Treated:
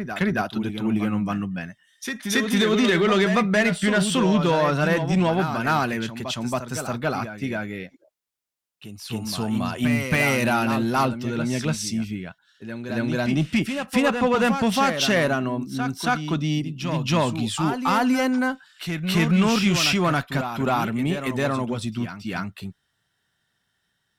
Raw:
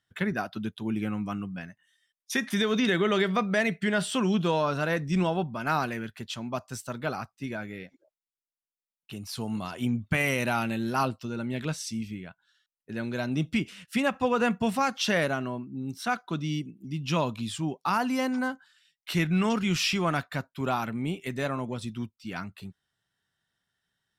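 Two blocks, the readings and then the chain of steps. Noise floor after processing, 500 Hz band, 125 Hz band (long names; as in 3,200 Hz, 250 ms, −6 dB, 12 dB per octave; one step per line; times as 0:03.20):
−74 dBFS, +6.0 dB, +6.5 dB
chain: harmonic generator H 5 −19 dB, 8 −37 dB, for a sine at −13.5 dBFS
backwards echo 276 ms −7.5 dB
level +3.5 dB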